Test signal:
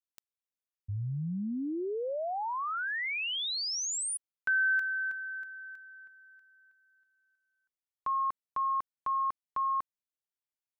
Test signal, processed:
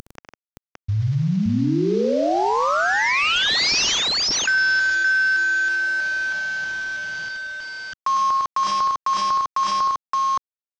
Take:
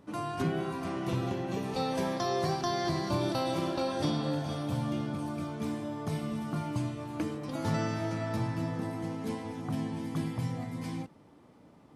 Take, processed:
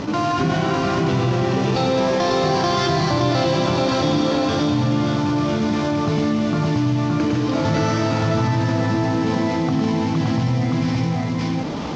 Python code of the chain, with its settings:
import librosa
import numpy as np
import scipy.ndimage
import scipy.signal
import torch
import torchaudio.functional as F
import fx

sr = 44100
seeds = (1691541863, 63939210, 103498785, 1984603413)

y = fx.cvsd(x, sr, bps=32000)
y = fx.echo_multitap(y, sr, ms=(65, 105, 153, 570), db=(-11.5, -4.5, -9.0, -3.0))
y = fx.env_flatten(y, sr, amount_pct=70)
y = y * librosa.db_to_amplitude(7.0)